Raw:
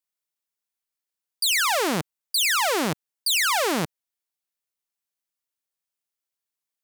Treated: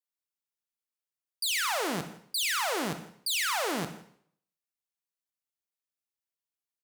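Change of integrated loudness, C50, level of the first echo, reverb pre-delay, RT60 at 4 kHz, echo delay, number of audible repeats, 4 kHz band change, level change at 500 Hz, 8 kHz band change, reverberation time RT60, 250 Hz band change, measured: -7.5 dB, 10.0 dB, -21.5 dB, 21 ms, 0.60 s, 165 ms, 1, -7.5 dB, -7.5 dB, -7.5 dB, 0.60 s, -7.5 dB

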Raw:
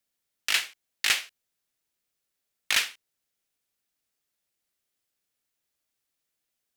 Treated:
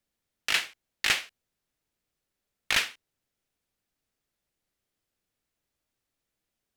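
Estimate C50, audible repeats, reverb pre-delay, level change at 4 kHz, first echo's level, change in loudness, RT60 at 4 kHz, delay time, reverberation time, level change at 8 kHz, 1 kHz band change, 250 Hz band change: no reverb, no echo, no reverb, -1.5 dB, no echo, -1.0 dB, no reverb, no echo, no reverb, -3.5 dB, +1.5 dB, +6.0 dB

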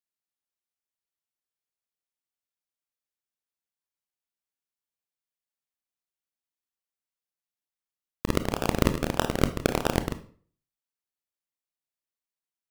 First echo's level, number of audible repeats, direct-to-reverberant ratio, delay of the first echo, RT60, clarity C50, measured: no echo, no echo, 9.5 dB, no echo, 0.45 s, 13.0 dB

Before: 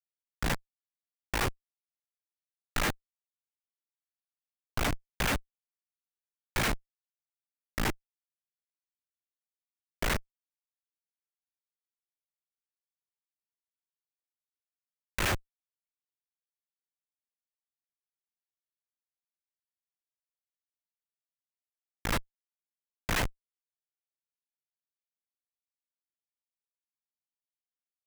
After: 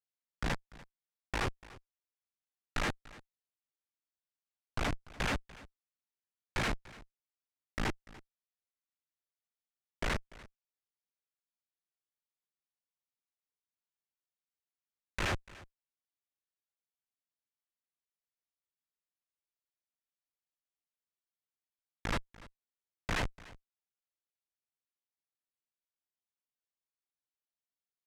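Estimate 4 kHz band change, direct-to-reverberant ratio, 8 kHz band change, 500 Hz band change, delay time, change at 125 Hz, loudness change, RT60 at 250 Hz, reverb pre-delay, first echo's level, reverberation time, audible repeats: -5.0 dB, no reverb, -9.0 dB, -3.5 dB, 292 ms, -3.5 dB, -4.5 dB, no reverb, no reverb, -20.0 dB, no reverb, 1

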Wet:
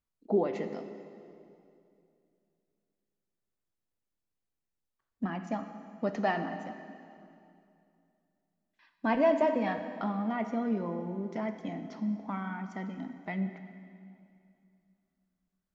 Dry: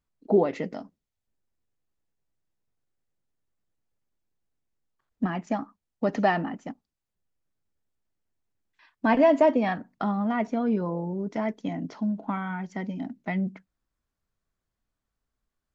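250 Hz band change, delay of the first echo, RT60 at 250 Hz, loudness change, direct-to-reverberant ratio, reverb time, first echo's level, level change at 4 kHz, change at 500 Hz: -5.5 dB, no echo, 2.9 s, -6.0 dB, 7.5 dB, 2.6 s, no echo, -5.5 dB, -6.0 dB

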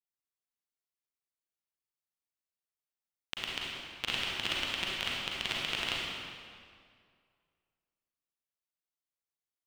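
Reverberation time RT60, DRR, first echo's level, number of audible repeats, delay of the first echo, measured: 2.1 s, -5.0 dB, no echo, no echo, no echo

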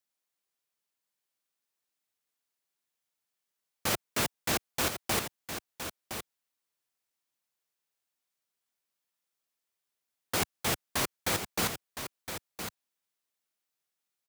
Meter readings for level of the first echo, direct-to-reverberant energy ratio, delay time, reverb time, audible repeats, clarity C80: -9.0 dB, no reverb, 1014 ms, no reverb, 1, no reverb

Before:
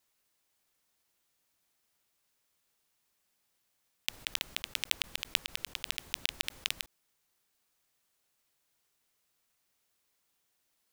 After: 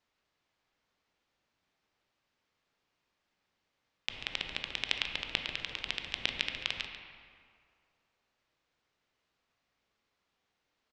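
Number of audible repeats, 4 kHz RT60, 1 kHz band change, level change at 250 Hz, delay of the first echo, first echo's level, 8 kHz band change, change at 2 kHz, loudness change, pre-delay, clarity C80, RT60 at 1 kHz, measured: 1, 1.4 s, +3.5 dB, +4.5 dB, 140 ms, -11.0 dB, -11.0 dB, +2.0 dB, 0.0 dB, 15 ms, 5.5 dB, 2.3 s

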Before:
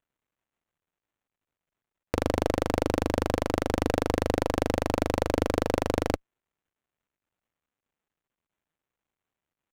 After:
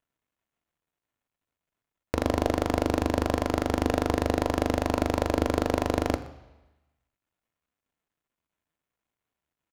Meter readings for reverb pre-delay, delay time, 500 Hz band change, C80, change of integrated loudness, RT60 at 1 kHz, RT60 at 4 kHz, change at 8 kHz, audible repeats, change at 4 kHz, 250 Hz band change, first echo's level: 3 ms, 123 ms, 0.0 dB, 15.5 dB, +1.0 dB, 1.1 s, 1.1 s, 0.0 dB, 1, +0.5 dB, +2.0 dB, -21.0 dB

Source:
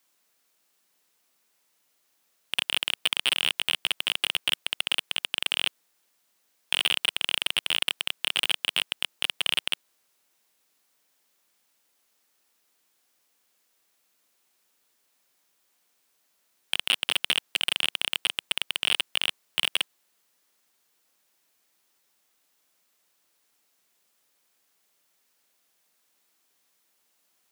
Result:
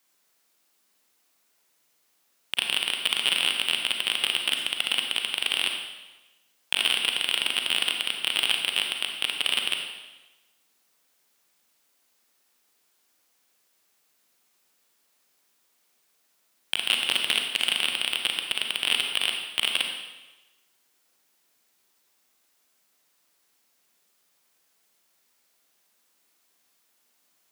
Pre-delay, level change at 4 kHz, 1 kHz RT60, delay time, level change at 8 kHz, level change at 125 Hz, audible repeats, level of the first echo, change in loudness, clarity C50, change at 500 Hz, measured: 33 ms, +1.5 dB, 1.1 s, no echo, +2.0 dB, no reading, no echo, no echo, +1.5 dB, 4.5 dB, +2.0 dB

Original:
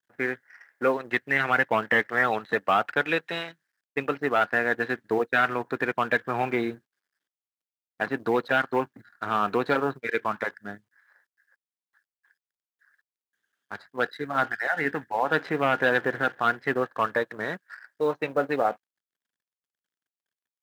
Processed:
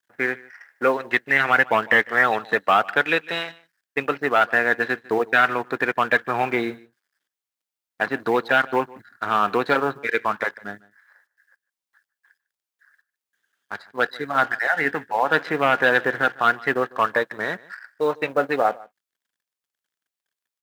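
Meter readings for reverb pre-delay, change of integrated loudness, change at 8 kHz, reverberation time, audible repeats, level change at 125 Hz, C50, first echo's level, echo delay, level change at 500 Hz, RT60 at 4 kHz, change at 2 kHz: no reverb, +5.0 dB, no reading, no reverb, 1, +0.5 dB, no reverb, -22.5 dB, 151 ms, +3.5 dB, no reverb, +5.5 dB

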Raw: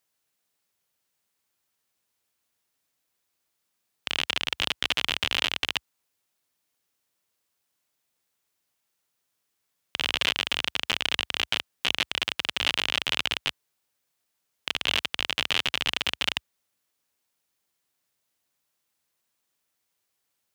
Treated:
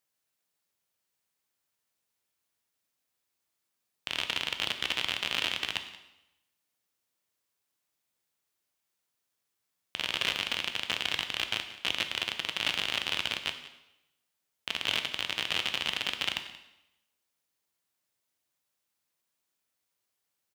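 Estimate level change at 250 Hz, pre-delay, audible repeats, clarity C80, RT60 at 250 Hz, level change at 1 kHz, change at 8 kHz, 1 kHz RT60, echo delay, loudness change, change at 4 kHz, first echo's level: -4.0 dB, 6 ms, 1, 11.0 dB, 0.90 s, -4.0 dB, -4.0 dB, 0.90 s, 180 ms, -4.0 dB, -4.0 dB, -18.0 dB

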